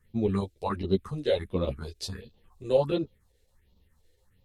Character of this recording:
phaser sweep stages 4, 1.4 Hz, lowest notch 170–1,800 Hz
chopped level 7.2 Hz, depth 65%, duty 90%
a shimmering, thickened sound

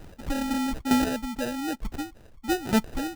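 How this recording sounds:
chopped level 1.1 Hz, depth 65%, duty 15%
phaser sweep stages 4, 3.7 Hz, lowest notch 470–1,100 Hz
aliases and images of a low sample rate 1,100 Hz, jitter 0%

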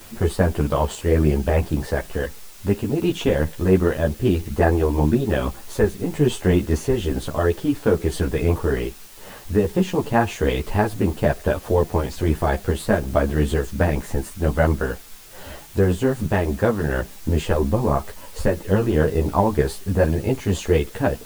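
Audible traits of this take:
a quantiser's noise floor 8 bits, dither triangular
a shimmering, thickened sound

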